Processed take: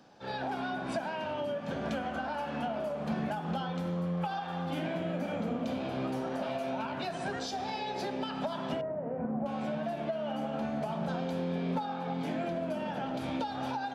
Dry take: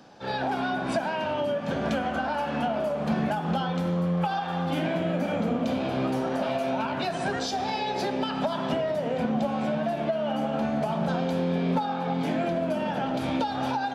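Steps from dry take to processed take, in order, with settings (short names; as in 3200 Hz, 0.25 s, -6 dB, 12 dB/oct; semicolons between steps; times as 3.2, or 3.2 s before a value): 8.81–9.46 Gaussian blur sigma 5.8 samples; gain -7 dB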